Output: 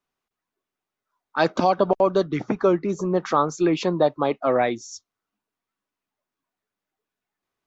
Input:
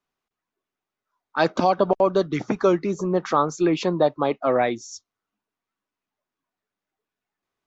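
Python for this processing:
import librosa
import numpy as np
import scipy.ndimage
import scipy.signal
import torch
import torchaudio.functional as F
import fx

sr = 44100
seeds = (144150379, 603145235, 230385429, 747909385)

y = fx.lowpass(x, sr, hz=fx.line((2.23, 3600.0), (2.88, 1700.0)), slope=6, at=(2.23, 2.88), fade=0.02)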